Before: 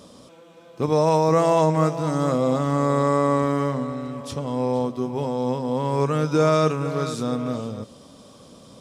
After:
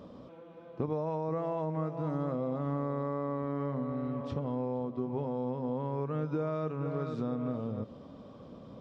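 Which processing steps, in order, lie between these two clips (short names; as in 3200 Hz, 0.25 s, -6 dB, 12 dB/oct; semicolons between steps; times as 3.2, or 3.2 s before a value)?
compressor 6:1, threshold -29 dBFS, peak gain reduction 14 dB; tape spacing loss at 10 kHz 40 dB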